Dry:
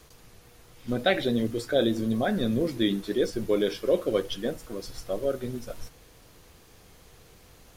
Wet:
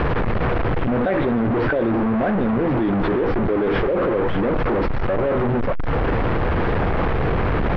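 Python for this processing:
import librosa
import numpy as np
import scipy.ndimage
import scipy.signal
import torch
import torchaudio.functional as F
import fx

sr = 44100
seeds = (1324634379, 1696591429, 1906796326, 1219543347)

y = fx.delta_mod(x, sr, bps=32000, step_db=-19.5)
y = scipy.signal.sosfilt(scipy.signal.bessel(4, 1300.0, 'lowpass', norm='mag', fs=sr, output='sos'), y)
y = fx.env_flatten(y, sr, amount_pct=100)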